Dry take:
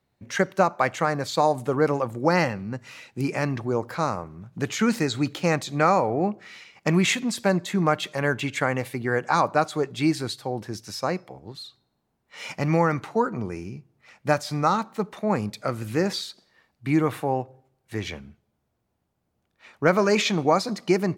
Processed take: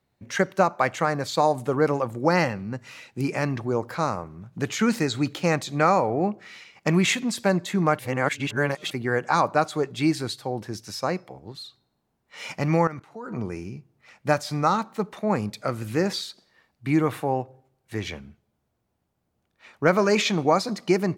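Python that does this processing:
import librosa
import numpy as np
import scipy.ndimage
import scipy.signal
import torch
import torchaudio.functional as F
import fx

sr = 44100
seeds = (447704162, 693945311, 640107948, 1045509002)

y = fx.level_steps(x, sr, step_db=18, at=(12.87, 13.3))
y = fx.edit(y, sr, fx.reverse_span(start_s=7.99, length_s=0.92), tone=tone)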